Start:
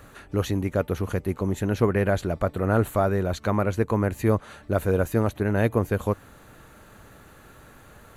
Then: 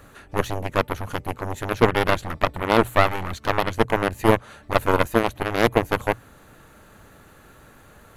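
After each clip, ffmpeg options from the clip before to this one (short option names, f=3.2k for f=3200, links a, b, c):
-af "aeval=exprs='0.447*(cos(1*acos(clip(val(0)/0.447,-1,1)))-cos(1*PI/2))+0.0501*(cos(6*acos(clip(val(0)/0.447,-1,1)))-cos(6*PI/2))+0.1*(cos(7*acos(clip(val(0)/0.447,-1,1)))-cos(7*PI/2))':c=same,bandreject=f=60:t=h:w=6,bandreject=f=120:t=h:w=6,volume=5dB"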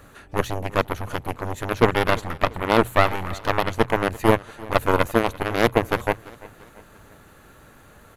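-af "aecho=1:1:341|682|1023:0.0891|0.041|0.0189"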